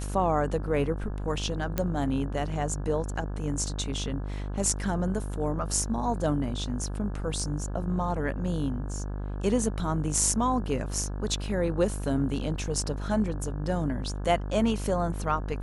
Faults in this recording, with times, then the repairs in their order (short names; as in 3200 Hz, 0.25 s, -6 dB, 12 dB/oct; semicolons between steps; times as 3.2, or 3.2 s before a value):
buzz 50 Hz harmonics 34 -33 dBFS
1.78 pop -12 dBFS
12.58 gap 3.9 ms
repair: de-click; de-hum 50 Hz, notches 34; interpolate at 12.58, 3.9 ms